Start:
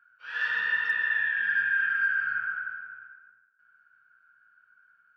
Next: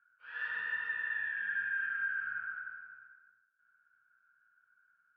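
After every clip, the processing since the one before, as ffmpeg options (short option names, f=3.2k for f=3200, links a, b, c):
-af "lowpass=2.6k,volume=-8.5dB"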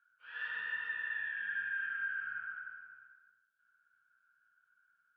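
-af "equalizer=f=3.2k:w=2.3:g=6.5,volume=-3dB"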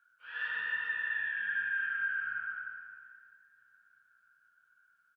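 -filter_complex "[0:a]asplit=2[a][b];[b]adelay=651,lowpass=f=1.9k:p=1,volume=-21dB,asplit=2[c][d];[d]adelay=651,lowpass=f=1.9k:p=1,volume=0.49,asplit=2[e][f];[f]adelay=651,lowpass=f=1.9k:p=1,volume=0.49,asplit=2[g][h];[h]adelay=651,lowpass=f=1.9k:p=1,volume=0.49[i];[a][c][e][g][i]amix=inputs=5:normalize=0,volume=4dB"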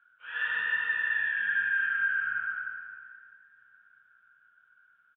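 -af "aresample=8000,aresample=44100,volume=5.5dB"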